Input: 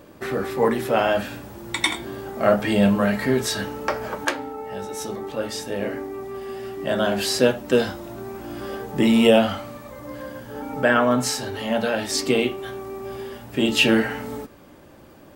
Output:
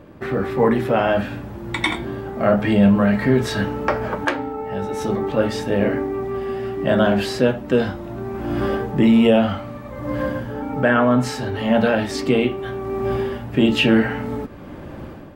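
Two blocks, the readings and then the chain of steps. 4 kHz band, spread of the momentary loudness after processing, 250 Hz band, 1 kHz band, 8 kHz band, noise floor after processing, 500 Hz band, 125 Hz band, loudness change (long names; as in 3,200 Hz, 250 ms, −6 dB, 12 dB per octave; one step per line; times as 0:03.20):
−2.5 dB, 13 LU, +5.0 dB, +2.5 dB, −8.5 dB, −36 dBFS, +2.5 dB, +7.5 dB, +2.5 dB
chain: bass and treble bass +6 dB, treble −13 dB
in parallel at −3 dB: brickwall limiter −12.5 dBFS, peak gain reduction 9.5 dB
on the sum: automatic gain control gain up to 11.5 dB
level −3.5 dB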